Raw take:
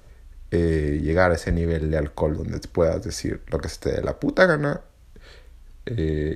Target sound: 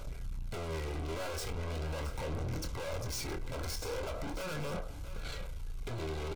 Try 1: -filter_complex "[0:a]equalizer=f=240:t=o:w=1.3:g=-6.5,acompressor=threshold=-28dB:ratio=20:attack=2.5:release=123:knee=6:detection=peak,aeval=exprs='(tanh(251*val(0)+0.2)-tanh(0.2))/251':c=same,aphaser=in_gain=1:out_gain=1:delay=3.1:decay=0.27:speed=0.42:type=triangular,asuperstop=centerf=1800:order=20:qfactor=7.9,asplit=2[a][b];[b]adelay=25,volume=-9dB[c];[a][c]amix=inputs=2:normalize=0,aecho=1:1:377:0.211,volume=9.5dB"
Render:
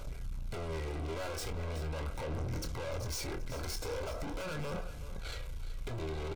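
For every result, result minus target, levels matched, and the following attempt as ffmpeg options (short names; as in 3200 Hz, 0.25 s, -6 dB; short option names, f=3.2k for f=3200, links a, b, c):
echo 0.291 s early; compressor: peak gain reduction +6 dB
-filter_complex "[0:a]equalizer=f=240:t=o:w=1.3:g=-6.5,acompressor=threshold=-28dB:ratio=20:attack=2.5:release=123:knee=6:detection=peak,aeval=exprs='(tanh(251*val(0)+0.2)-tanh(0.2))/251':c=same,aphaser=in_gain=1:out_gain=1:delay=3.1:decay=0.27:speed=0.42:type=triangular,asuperstop=centerf=1800:order=20:qfactor=7.9,asplit=2[a][b];[b]adelay=25,volume=-9dB[c];[a][c]amix=inputs=2:normalize=0,aecho=1:1:668:0.211,volume=9.5dB"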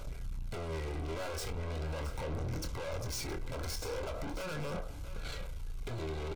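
compressor: peak gain reduction +6 dB
-filter_complex "[0:a]equalizer=f=240:t=o:w=1.3:g=-6.5,acompressor=threshold=-21.5dB:ratio=20:attack=2.5:release=123:knee=6:detection=peak,aeval=exprs='(tanh(251*val(0)+0.2)-tanh(0.2))/251':c=same,aphaser=in_gain=1:out_gain=1:delay=3.1:decay=0.27:speed=0.42:type=triangular,asuperstop=centerf=1800:order=20:qfactor=7.9,asplit=2[a][b];[b]adelay=25,volume=-9dB[c];[a][c]amix=inputs=2:normalize=0,aecho=1:1:668:0.211,volume=9.5dB"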